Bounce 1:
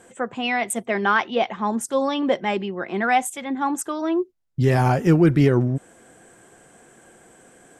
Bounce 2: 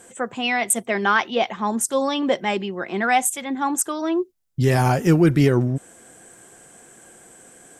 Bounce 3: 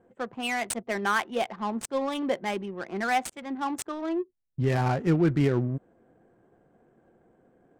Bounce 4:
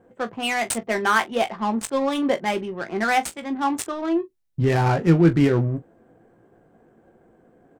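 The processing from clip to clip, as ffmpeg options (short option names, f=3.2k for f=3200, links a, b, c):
-af "highshelf=f=4.6k:g=10"
-af "adynamicsmooth=sensitivity=2.5:basefreq=720,volume=-7dB"
-af "aecho=1:1:18|42:0.398|0.141,volume=5.5dB"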